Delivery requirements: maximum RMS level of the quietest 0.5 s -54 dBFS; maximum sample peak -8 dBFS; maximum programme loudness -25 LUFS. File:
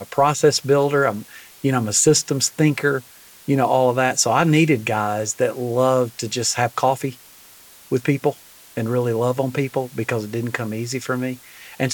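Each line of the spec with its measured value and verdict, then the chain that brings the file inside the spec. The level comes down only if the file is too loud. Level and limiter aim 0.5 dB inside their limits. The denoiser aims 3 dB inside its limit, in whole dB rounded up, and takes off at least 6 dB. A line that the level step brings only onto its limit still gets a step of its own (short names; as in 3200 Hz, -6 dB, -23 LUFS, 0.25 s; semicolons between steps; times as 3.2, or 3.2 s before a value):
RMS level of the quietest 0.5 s -46 dBFS: fail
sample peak -4.5 dBFS: fail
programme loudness -20.0 LUFS: fail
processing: denoiser 6 dB, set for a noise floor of -46 dBFS; gain -5.5 dB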